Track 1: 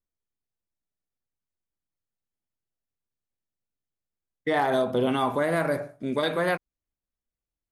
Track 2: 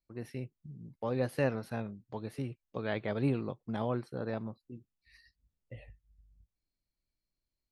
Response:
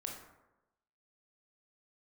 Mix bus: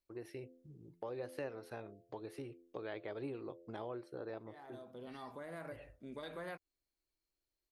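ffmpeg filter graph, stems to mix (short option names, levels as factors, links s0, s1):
-filter_complex "[0:a]volume=0.237[s0];[1:a]lowshelf=f=270:t=q:w=3:g=-6,bandreject=f=85.62:t=h:w=4,bandreject=f=171.24:t=h:w=4,bandreject=f=256.86:t=h:w=4,bandreject=f=342.48:t=h:w=4,bandreject=f=428.1:t=h:w=4,bandreject=f=513.72:t=h:w=4,bandreject=f=599.34:t=h:w=4,bandreject=f=684.96:t=h:w=4,volume=0.891,asplit=2[s1][s2];[s2]apad=whole_len=344829[s3];[s0][s3]sidechaincompress=threshold=0.00178:ratio=4:attack=7.1:release=1070[s4];[s4][s1]amix=inputs=2:normalize=0,acompressor=threshold=0.00562:ratio=2.5"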